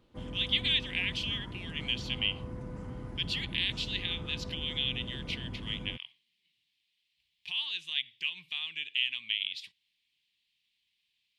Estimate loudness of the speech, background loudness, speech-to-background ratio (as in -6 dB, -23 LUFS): -32.5 LUFS, -42.5 LUFS, 10.0 dB